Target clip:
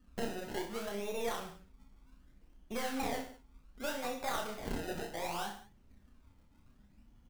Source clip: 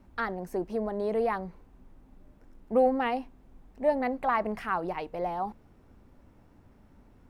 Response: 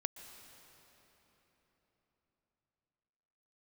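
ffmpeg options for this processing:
-filter_complex "[0:a]aemphasis=mode=production:type=75fm,afftdn=noise_reduction=13:noise_floor=-47,adynamicequalizer=threshold=0.002:dfrequency=170:dqfactor=5.6:tfrequency=170:tqfactor=5.6:attack=5:release=100:ratio=0.375:range=2:mode=cutabove:tftype=bell,acompressor=threshold=-36dB:ratio=2.5,acrusher=samples=27:mix=1:aa=0.000001:lfo=1:lforange=27:lforate=0.66,flanger=delay=4.4:depth=1.4:regen=-70:speed=0.63:shape=sinusoidal,aeval=exprs='0.0299*(cos(1*acos(clip(val(0)/0.0299,-1,1)))-cos(1*PI/2))+0.00841*(cos(2*acos(clip(val(0)/0.0299,-1,1)))-cos(2*PI/2))':channel_layout=same,asplit=2[link_01][link_02];[link_02]aecho=0:1:30|64.5|104.2|149.8|202.3:0.631|0.398|0.251|0.158|0.1[link_03];[link_01][link_03]amix=inputs=2:normalize=0,volume=1dB"

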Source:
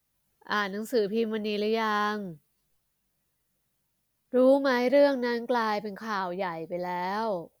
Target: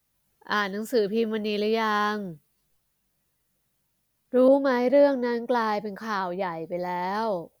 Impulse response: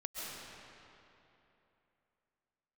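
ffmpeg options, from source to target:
-filter_complex "[0:a]asettb=1/sr,asplit=3[link_01][link_02][link_03];[link_01]atrim=end=4.484[link_04];[link_02]atrim=start=4.48:end=7.15,asetpts=PTS-STARTPTS,afade=type=in:duration=0.004:curve=qsin,afade=type=out:start_time=2.666:duration=0.004:curve=qsin,adynamicequalizer=threshold=0.01:dfrequency=1600:dqfactor=0.7:tfrequency=1600:tqfactor=0.7:attack=5:release=100:ratio=0.375:range=3.5:mode=cutabove:tftype=highshelf[link_05];[link_03]atrim=start=7.146[link_06];[link_04][link_05]acrossfade=duration=0.004:curve1=hsin:curve2=qsin[link_07];[link_07][link_06]acrossfade=duration=0.004:curve1=qsin:curve2=hsin,volume=2.5dB"

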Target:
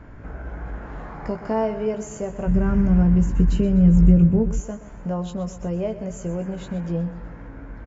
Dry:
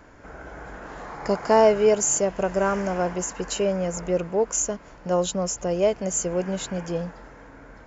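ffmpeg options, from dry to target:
ffmpeg -i in.wav -filter_complex "[0:a]acompressor=threshold=-41dB:ratio=1.5,bass=frequency=250:gain=12,treble=frequency=4000:gain=-13,asplit=2[link_01][link_02];[link_02]adelay=18,volume=-7dB[link_03];[link_01][link_03]amix=inputs=2:normalize=0,aecho=1:1:125|250|375|500|625:0.2|0.0978|0.0479|0.0235|0.0115,asplit=3[link_04][link_05][link_06];[link_04]afade=type=out:start_time=2.46:duration=0.02[link_07];[link_05]asubboost=boost=10.5:cutoff=210,afade=type=in:start_time=2.46:duration=0.02,afade=type=out:start_time=4.59:duration=0.02[link_08];[link_06]afade=type=in:start_time=4.59:duration=0.02[link_09];[link_07][link_08][link_09]amix=inputs=3:normalize=0" out.wav

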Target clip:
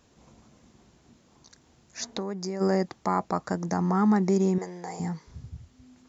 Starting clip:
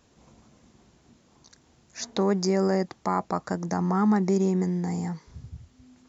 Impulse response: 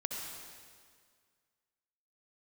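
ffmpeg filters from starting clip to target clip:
-filter_complex "[0:a]asplit=3[link_01][link_02][link_03];[link_01]afade=type=out:start_time=2.06:duration=0.02[link_04];[link_02]acompressor=threshold=-31dB:ratio=4,afade=type=in:start_time=2.06:duration=0.02,afade=type=out:start_time=2.6:duration=0.02[link_05];[link_03]afade=type=in:start_time=2.6:duration=0.02[link_06];[link_04][link_05][link_06]amix=inputs=3:normalize=0,asettb=1/sr,asplit=3[link_07][link_08][link_09];[link_07]atrim=end=4.584[link_10];[link_08]atrim=start=4.58:end=5,asetpts=PTS-STARTPTS,afade=type=in:duration=0.004:curve=qsin,afade=type=out:start_time=0.416:duration=0.004:curve=qsin,lowshelf=frequency=360:width_type=q:width=1.5:gain=-14[link_11];[link_09]atrim=start=4.996[link_12];[link_10][link_11]acrossfade=duration=0.004:curve1=hsin:curve2=qsin[link_13];[link_13][link_12]acrossfade=duration=0.004:curve1=qsin:curve2=hsin"

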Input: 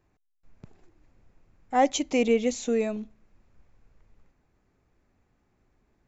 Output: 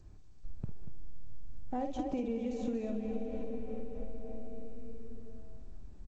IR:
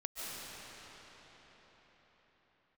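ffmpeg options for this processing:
-filter_complex "[0:a]asoftclip=type=hard:threshold=-14dB,aemphasis=mode=reproduction:type=riaa,bandreject=frequency=2100:width=7.7,asplit=2[link_01][link_02];[1:a]atrim=start_sample=2205,highshelf=frequency=4200:gain=-10[link_03];[link_02][link_03]afir=irnorm=-1:irlink=0,volume=-11dB[link_04];[link_01][link_04]amix=inputs=2:normalize=0,acrossover=split=970|2200[link_05][link_06][link_07];[link_05]acompressor=threshold=-27dB:ratio=4[link_08];[link_06]acompressor=threshold=-57dB:ratio=4[link_09];[link_07]acompressor=threshold=-54dB:ratio=4[link_10];[link_08][link_09][link_10]amix=inputs=3:normalize=0,aecho=1:1:52.48|236.2:0.501|0.447,acompressor=threshold=-32dB:ratio=6" -ar 16000 -c:a g722

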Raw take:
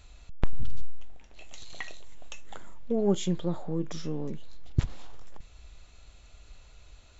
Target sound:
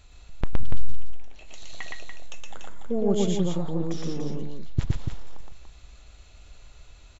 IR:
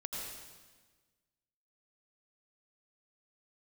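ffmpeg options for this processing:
-af "aecho=1:1:116.6|288.6:0.891|0.501"

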